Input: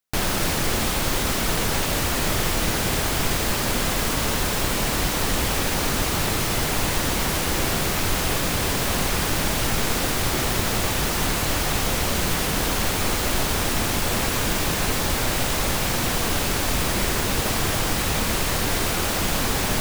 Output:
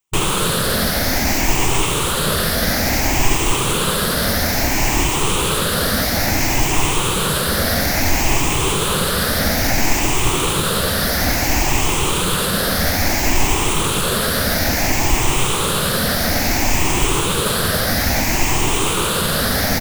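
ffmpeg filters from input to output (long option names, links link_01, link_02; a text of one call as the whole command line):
ffmpeg -i in.wav -filter_complex "[0:a]afftfilt=real='re*pow(10,13/40*sin(2*PI*(0.68*log(max(b,1)*sr/1024/100)/log(2)-(0.59)*(pts-256)/sr)))':imag='im*pow(10,13/40*sin(2*PI*(0.68*log(max(b,1)*sr/1024/100)/log(2)-(0.59)*(pts-256)/sr)))':win_size=1024:overlap=0.75,asplit=2[link_01][link_02];[link_02]asetrate=35002,aresample=44100,atempo=1.25992,volume=-4dB[link_03];[link_01][link_03]amix=inputs=2:normalize=0,volume=2dB" out.wav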